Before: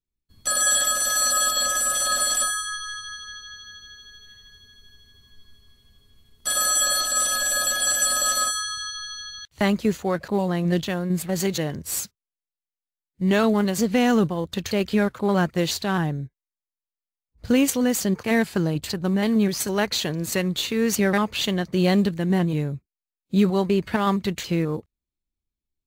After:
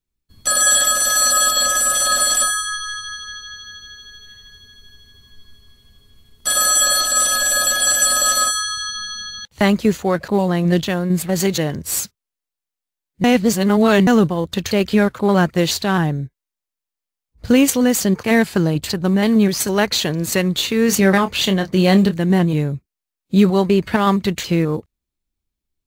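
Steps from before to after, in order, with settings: 8.88–9.53 s: small resonant body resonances 200/510/840 Hz, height 13 dB; 13.24–14.07 s: reverse; 20.86–22.16 s: doubling 26 ms -9.5 dB; trim +6 dB

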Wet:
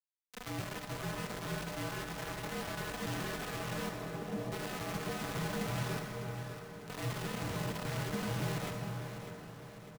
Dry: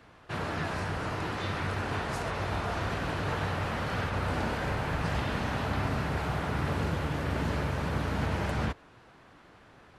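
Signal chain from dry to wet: vocoder on a broken chord major triad, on F3, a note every 145 ms; 5.99–6.90 s: valve stage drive 37 dB, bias 0.45; flange 0.79 Hz, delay 7.2 ms, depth 4.9 ms, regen +38%; bit crusher 6-bit; frequency shift -54 Hz; 3.89–4.52 s: Butterworth band-pass 330 Hz, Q 0.64; feedback delay 601 ms, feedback 52%, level -11 dB; reverberation RT60 4.6 s, pre-delay 38 ms, DRR 3 dB; trim -3.5 dB

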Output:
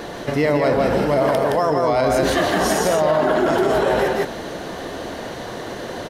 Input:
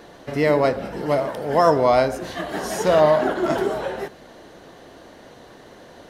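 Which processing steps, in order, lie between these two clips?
reverse; compression 6:1, threshold -26 dBFS, peak gain reduction 14.5 dB; reverse; delay 168 ms -3 dB; loudness maximiser +21 dB; trim -8 dB

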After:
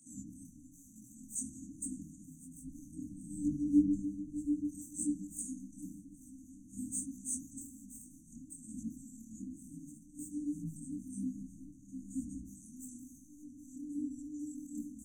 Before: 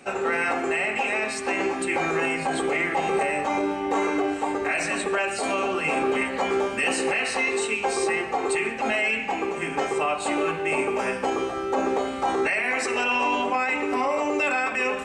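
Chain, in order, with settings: trance gate "..x.xxxxxx.x...x" 134 bpm -12 dB; peak limiter -18.5 dBFS, peak gain reduction 5 dB; saturation -30 dBFS, distortion -9 dB; compressor with a negative ratio -41 dBFS, ratio -0.5; 2.59–4.63 s: bass shelf 320 Hz +9.5 dB; echo from a far wall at 130 m, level -15 dB; reverberation RT60 0.95 s, pre-delay 51 ms, DRR -13 dB; FFT band-reject 320–5900 Hz; pre-emphasis filter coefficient 0.8; detune thickener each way 39 cents; trim +9.5 dB

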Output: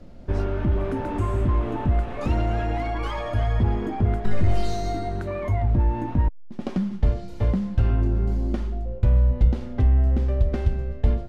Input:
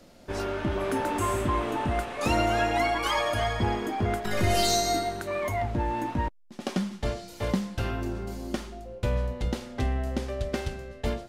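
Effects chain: hard clipper -21.5 dBFS, distortion -16 dB; compression, threshold -28 dBFS, peak gain reduction 5 dB; RIAA curve playback

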